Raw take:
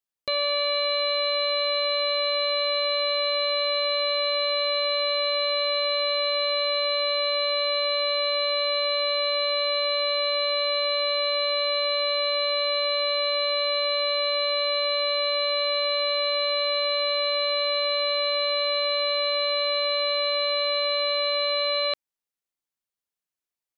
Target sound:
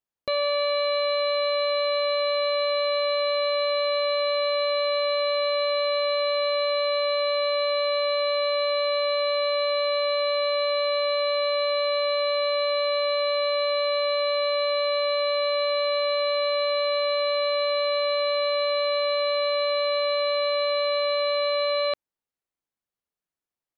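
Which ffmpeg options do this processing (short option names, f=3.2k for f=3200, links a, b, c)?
-af "highshelf=f=2.1k:g=-11,volume=4dB"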